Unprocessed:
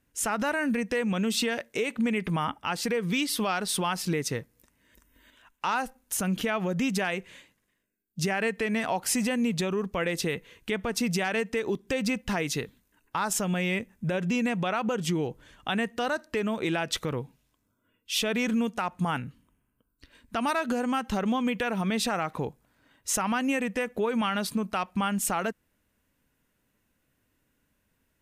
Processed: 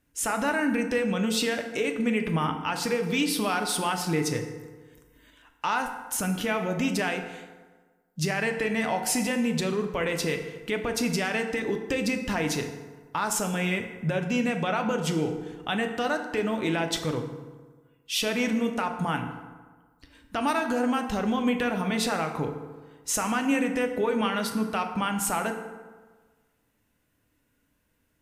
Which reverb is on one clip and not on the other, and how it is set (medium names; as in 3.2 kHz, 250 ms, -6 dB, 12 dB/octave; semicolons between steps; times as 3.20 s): FDN reverb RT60 1.4 s, low-frequency decay 1×, high-frequency decay 0.55×, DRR 4.5 dB